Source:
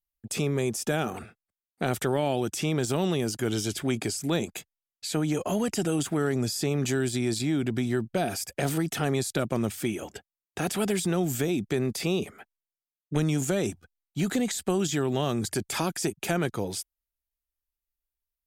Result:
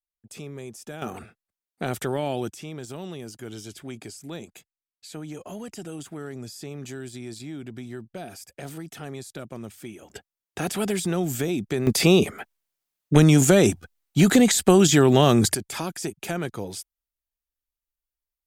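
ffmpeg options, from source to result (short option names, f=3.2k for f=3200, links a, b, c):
-af "asetnsamples=n=441:p=0,asendcmd='1.02 volume volume -1dB;2.51 volume volume -10dB;10.1 volume volume 1dB;11.87 volume volume 10.5dB;15.55 volume volume -2dB',volume=-11dB"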